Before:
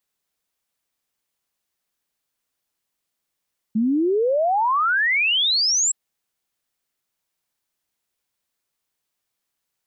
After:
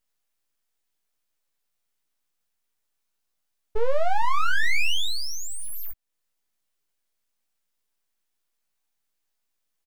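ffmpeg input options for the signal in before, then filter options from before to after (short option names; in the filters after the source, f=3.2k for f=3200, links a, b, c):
-f lavfi -i "aevalsrc='0.15*clip(min(t,2.17-t)/0.01,0,1)*sin(2*PI*210*2.17/log(7800/210)*(exp(log(7800/210)*t/2.17)-1))':d=2.17:s=44100"
-filter_complex "[0:a]acrossover=split=170|1600[a][b][c];[c]alimiter=level_in=4.5dB:limit=-24dB:level=0:latency=1:release=316,volume=-4.5dB[d];[a][b][d]amix=inputs=3:normalize=0,aeval=exprs='abs(val(0))':c=same,asplit=2[e][f];[f]adelay=17,volume=-5.5dB[g];[e][g]amix=inputs=2:normalize=0"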